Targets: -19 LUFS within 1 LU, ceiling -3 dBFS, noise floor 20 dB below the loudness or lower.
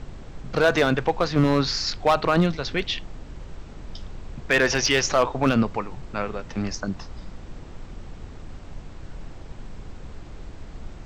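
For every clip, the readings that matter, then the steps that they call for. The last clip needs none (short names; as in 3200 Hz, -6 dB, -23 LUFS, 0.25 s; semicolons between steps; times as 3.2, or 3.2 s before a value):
clipped 0.5%; flat tops at -11.5 dBFS; noise floor -41 dBFS; noise floor target -43 dBFS; loudness -23.0 LUFS; peak -11.5 dBFS; loudness target -19.0 LUFS
-> clip repair -11.5 dBFS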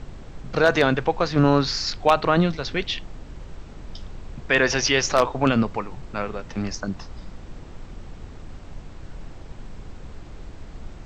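clipped 0.0%; noise floor -41 dBFS; noise floor target -42 dBFS
-> noise print and reduce 6 dB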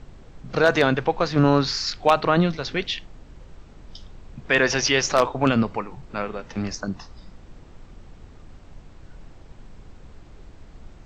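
noise floor -47 dBFS; loudness -22.0 LUFS; peak -2.5 dBFS; loudness target -19.0 LUFS
-> gain +3 dB; limiter -3 dBFS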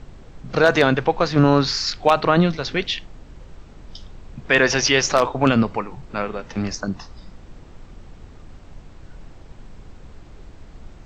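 loudness -19.5 LUFS; peak -3.0 dBFS; noise floor -44 dBFS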